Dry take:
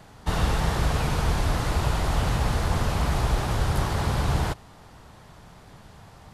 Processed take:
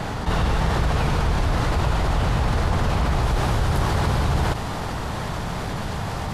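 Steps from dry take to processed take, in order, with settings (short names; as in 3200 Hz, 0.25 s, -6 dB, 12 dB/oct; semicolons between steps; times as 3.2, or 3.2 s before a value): high shelf 6800 Hz -10.5 dB, from 3.23 s -5 dB; fast leveller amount 70%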